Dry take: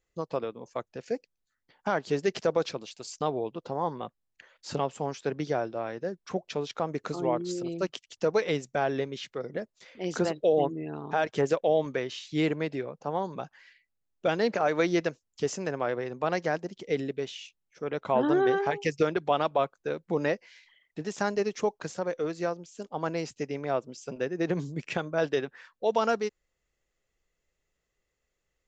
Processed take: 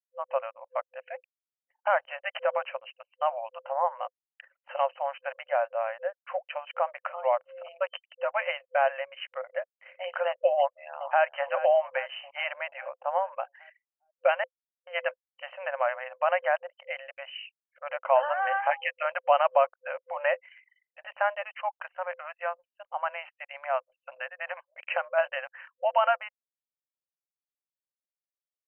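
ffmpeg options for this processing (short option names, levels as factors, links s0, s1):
-filter_complex "[0:a]asplit=2[s0][s1];[s1]afade=t=in:st=10.59:d=0.01,afade=t=out:st=11.24:d=0.01,aecho=0:1:410|820|1230|1640|2050|2460|2870:0.223872|0.134323|0.080594|0.0483564|0.0290138|0.0174083|0.010445[s2];[s0][s2]amix=inputs=2:normalize=0,asettb=1/sr,asplit=3[s3][s4][s5];[s3]atrim=end=21.424[s6];[s4]atrim=start=21.42:end=24.68,asetpts=PTS-STARTPTS,afade=t=in:d=0.004:c=qsin,afade=t=out:st=3.256:d=0.004:c=qsin,highpass=f=680:w=0.5412,highpass=f=680:w=1.3066[s7];[s5]atrim=start=24.676[s8];[s6][s7]acrossfade=d=0.004:c1=hsin:c2=qsin[s9];[s9][s8]acrossfade=d=0.004:c1=qsin:c2=hsin,asplit=3[s10][s11][s12];[s10]atrim=end=14.44,asetpts=PTS-STARTPTS,afade=t=out:st=14.436:d=0.004:c=hsin[s13];[s11]atrim=start=14.44:end=14.87,asetpts=PTS-STARTPTS,volume=0[s14];[s12]atrim=start=14.87,asetpts=PTS-STARTPTS,afade=t=in:d=0.004:c=hsin[s15];[s13][s14][s15]concat=n=3:v=0:a=1,afftfilt=real='re*between(b*sr/4096,510,3100)':imag='im*between(b*sr/4096,510,3100)':win_size=4096:overlap=0.75,anlmdn=0.000631,volume=1.68"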